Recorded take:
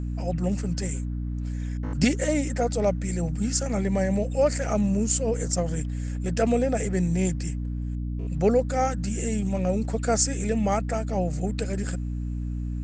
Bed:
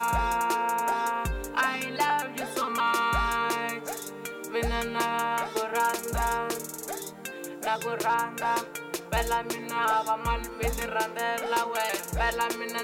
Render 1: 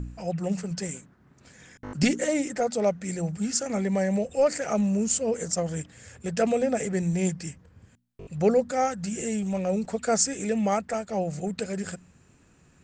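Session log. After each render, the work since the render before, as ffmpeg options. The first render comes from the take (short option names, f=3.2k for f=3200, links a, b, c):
-af "bandreject=f=60:t=h:w=4,bandreject=f=120:t=h:w=4,bandreject=f=180:t=h:w=4,bandreject=f=240:t=h:w=4,bandreject=f=300:t=h:w=4"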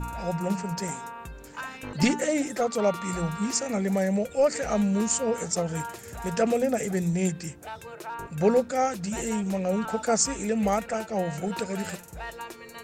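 -filter_complex "[1:a]volume=-11dB[a];[0:a][a]amix=inputs=2:normalize=0"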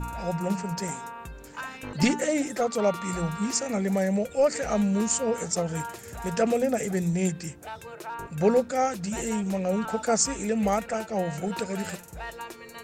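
-af anull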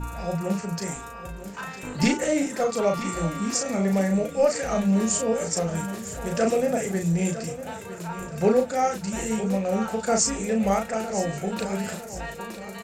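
-filter_complex "[0:a]asplit=2[a][b];[b]adelay=36,volume=-4dB[c];[a][c]amix=inputs=2:normalize=0,aecho=1:1:956|1912|2868|3824|4780:0.224|0.105|0.0495|0.0232|0.0109"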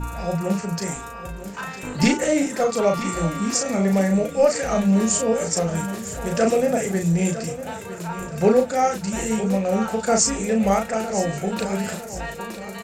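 -af "volume=3.5dB"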